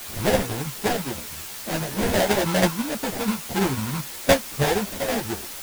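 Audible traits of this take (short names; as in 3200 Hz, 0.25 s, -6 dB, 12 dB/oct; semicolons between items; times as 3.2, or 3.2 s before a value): aliases and images of a low sample rate 1200 Hz, jitter 20%; tremolo saw down 6.1 Hz, depth 60%; a quantiser's noise floor 6-bit, dither triangular; a shimmering, thickened sound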